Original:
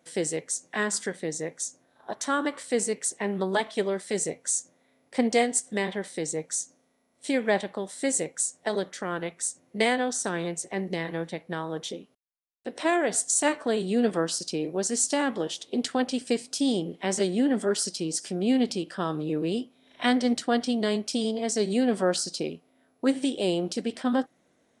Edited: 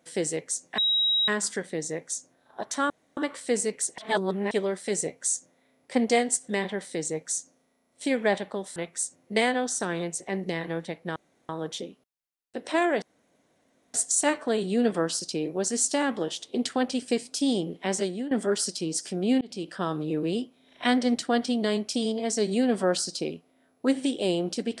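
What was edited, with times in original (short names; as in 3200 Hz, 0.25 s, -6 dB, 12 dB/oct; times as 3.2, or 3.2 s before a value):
0.78 add tone 3830 Hz -20.5 dBFS 0.50 s
2.4 insert room tone 0.27 s
3.21–3.74 reverse
7.99–9.2 cut
11.6 insert room tone 0.33 s
13.13 insert room tone 0.92 s
17.09–17.5 fade out, to -14 dB
18.6–18.89 fade in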